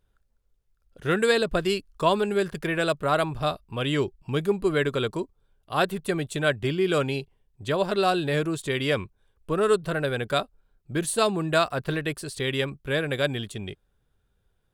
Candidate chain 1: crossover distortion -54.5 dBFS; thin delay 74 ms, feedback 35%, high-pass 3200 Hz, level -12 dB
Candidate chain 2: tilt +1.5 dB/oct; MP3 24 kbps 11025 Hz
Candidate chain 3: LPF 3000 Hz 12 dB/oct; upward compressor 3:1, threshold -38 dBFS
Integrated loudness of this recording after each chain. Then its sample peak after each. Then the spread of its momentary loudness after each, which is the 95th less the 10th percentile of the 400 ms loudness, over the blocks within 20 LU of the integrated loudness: -26.0, -27.0, -26.5 LUFS; -9.0, -8.5, -9.5 dBFS; 8, 9, 9 LU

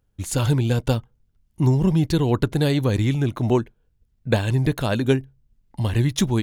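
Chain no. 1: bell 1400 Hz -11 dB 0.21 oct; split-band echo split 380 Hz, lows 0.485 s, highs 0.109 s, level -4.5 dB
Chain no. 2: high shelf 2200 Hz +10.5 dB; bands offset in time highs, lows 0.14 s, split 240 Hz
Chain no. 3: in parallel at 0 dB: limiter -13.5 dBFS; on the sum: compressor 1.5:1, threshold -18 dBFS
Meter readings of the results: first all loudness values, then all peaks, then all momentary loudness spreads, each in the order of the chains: -21.0, -21.5, -19.5 LUFS; -4.0, -1.5, -5.0 dBFS; 7, 9, 6 LU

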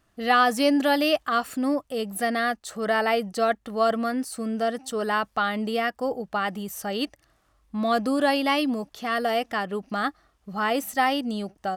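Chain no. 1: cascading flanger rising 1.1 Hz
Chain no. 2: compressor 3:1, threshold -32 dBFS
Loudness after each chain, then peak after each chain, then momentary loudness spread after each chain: -30.5, -33.5 LUFS; -13.5, -18.0 dBFS; 9, 4 LU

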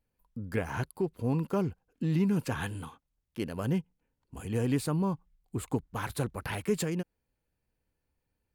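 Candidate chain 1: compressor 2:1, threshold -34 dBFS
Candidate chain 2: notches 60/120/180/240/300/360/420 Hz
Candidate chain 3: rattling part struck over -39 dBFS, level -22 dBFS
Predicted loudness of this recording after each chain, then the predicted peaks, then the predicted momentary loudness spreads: -37.0, -33.0, -31.5 LUFS; -21.5, -17.5, -15.0 dBFS; 10, 15, 11 LU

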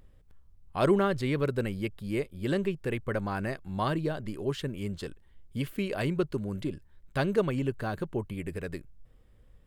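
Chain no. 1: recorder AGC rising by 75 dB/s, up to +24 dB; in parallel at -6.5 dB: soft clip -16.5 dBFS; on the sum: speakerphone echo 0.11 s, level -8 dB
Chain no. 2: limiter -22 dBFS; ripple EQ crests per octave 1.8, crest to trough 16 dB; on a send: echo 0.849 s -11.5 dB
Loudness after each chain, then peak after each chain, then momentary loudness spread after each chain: -25.5, -30.5 LUFS; -4.0, -14.5 dBFS; 13, 11 LU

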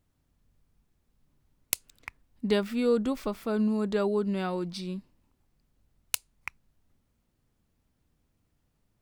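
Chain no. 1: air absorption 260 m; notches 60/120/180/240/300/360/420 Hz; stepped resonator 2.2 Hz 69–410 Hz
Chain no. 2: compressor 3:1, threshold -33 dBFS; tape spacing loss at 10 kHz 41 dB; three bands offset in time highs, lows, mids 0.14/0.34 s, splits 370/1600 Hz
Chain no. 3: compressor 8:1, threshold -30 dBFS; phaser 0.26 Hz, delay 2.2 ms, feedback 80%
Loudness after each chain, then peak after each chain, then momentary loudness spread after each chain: -38.5, -39.0, -31.5 LUFS; -24.0, -26.0, -10.0 dBFS; 19, 21, 18 LU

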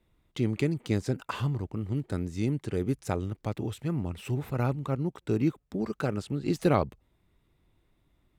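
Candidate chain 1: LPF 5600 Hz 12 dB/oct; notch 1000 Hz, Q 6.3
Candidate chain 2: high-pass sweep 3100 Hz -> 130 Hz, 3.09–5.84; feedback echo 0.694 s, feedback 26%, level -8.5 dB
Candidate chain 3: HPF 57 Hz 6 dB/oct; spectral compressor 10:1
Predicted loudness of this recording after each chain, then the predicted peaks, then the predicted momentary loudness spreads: -31.0, -28.5, -35.0 LUFS; -11.5, -6.5, -10.0 dBFS; 6, 21, 20 LU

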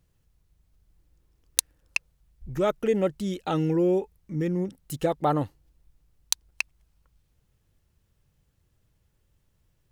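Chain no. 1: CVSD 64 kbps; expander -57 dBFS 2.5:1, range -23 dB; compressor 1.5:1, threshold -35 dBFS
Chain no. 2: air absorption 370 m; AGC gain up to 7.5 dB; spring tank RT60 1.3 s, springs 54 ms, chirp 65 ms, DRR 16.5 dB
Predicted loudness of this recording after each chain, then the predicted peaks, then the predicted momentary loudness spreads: -33.0, -21.5 LUFS; -16.5, -6.0 dBFS; 16, 20 LU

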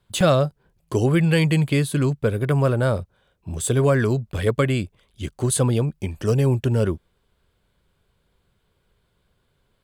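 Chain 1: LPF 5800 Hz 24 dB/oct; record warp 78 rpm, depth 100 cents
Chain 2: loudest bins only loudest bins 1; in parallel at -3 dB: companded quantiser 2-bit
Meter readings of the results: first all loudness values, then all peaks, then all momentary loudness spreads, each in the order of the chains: -21.5, -24.0 LUFS; -5.0, -15.5 dBFS; 10, 11 LU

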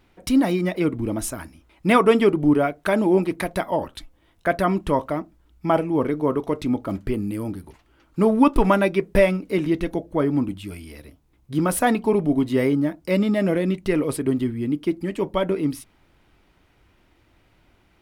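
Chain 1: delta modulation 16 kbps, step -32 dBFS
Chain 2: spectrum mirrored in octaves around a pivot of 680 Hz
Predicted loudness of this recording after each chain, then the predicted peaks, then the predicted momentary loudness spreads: -23.5, -24.5 LUFS; -4.0, -4.0 dBFS; 19, 13 LU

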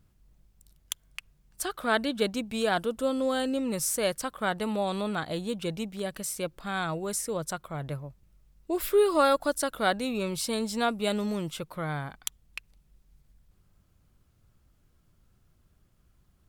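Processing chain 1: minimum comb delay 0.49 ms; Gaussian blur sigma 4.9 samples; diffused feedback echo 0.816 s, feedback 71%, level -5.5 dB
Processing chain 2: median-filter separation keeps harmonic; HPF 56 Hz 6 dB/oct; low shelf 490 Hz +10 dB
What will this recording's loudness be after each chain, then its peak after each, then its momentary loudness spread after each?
-31.5, -25.5 LUFS; -15.0, -9.0 dBFS; 15, 12 LU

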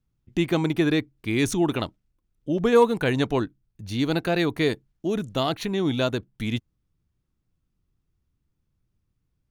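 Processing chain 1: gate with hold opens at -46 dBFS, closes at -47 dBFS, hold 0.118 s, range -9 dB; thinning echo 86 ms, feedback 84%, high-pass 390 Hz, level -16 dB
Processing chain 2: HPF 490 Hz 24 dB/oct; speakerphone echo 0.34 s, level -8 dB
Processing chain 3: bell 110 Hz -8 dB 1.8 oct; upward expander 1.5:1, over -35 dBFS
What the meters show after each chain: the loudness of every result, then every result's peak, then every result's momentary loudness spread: -25.0, -29.0, -29.0 LUFS; -6.5, -9.0, -7.5 dBFS; 11, 16, 18 LU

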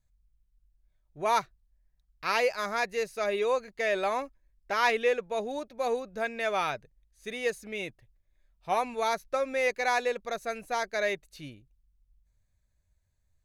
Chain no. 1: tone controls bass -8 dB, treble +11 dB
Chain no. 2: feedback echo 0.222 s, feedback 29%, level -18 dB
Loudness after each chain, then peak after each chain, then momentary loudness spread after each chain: -29.5, -30.0 LUFS; -8.5, -12.0 dBFS; 11, 13 LU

